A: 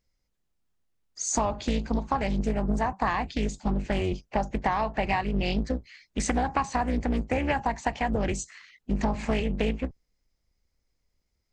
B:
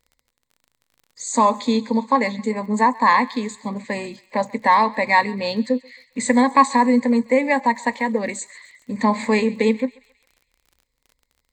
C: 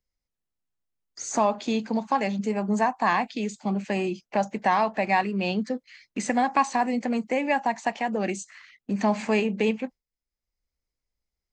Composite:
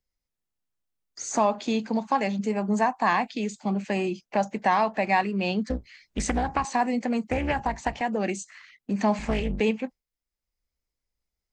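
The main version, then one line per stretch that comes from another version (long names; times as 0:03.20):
C
0:05.70–0:06.65: punch in from A
0:07.30–0:08.01: punch in from A
0:09.19–0:09.60: punch in from A
not used: B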